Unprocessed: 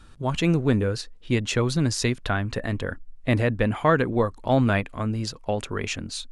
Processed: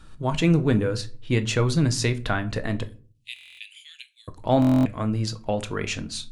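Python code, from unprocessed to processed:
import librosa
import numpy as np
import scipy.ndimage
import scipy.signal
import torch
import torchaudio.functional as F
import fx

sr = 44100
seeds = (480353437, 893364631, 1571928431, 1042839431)

y = fx.steep_highpass(x, sr, hz=2600.0, slope=48, at=(2.83, 4.28))
y = fx.room_shoebox(y, sr, seeds[0], volume_m3=220.0, walls='furnished', distance_m=0.58)
y = fx.buffer_glitch(y, sr, at_s=(3.34, 4.6), block=1024, repeats=10)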